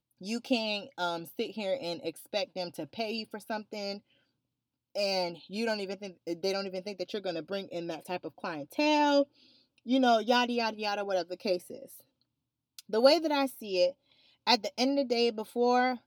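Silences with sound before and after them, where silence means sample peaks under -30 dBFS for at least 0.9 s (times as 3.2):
3.93–4.97
11.57–12.79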